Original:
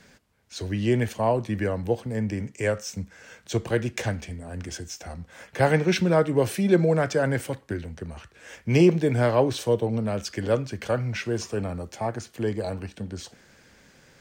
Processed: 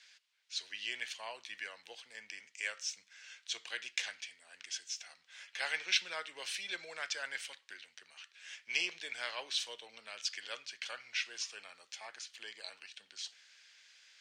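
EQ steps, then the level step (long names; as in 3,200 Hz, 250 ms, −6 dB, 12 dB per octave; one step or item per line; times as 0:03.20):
four-pole ladder band-pass 4,300 Hz, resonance 20%
high-shelf EQ 5,000 Hz −7 dB
+13.5 dB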